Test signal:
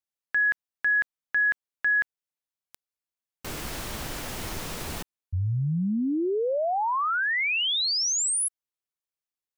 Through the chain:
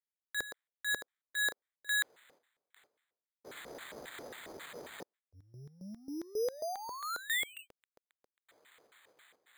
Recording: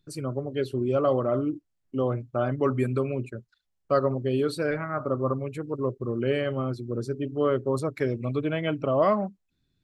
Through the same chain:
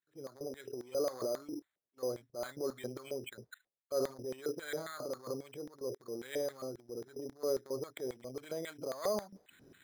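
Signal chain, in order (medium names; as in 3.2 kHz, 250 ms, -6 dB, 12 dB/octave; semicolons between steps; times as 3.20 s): transient shaper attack -8 dB, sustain +10 dB; reverse; upward compressor 4:1, threshold -26 dBFS; reverse; LFO band-pass square 3.7 Hz 490–1900 Hz; gate -60 dBFS, range -10 dB; Savitzky-Golay filter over 25 samples; careless resampling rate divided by 8×, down filtered, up hold; trim -5.5 dB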